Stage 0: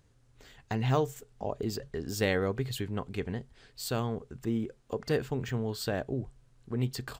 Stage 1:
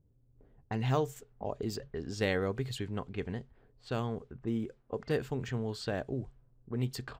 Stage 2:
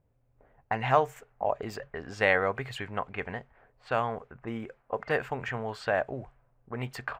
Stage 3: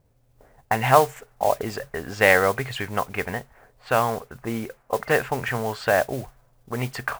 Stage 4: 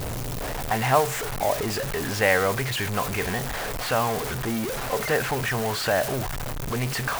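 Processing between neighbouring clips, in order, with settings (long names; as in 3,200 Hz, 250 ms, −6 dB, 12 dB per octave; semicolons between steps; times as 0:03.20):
low-pass that shuts in the quiet parts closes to 370 Hz, open at −29 dBFS; level −2.5 dB
flat-topped bell 1,200 Hz +15 dB 2.6 octaves; level −3.5 dB
noise that follows the level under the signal 17 dB; level +7.5 dB
converter with a step at zero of −18 dBFS; level −6 dB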